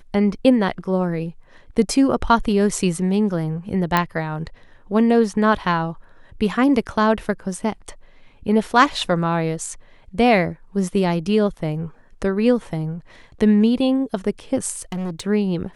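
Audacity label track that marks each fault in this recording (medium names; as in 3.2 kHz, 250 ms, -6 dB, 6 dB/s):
3.970000	3.970000	pop -4 dBFS
14.760000	15.210000	clipped -23.5 dBFS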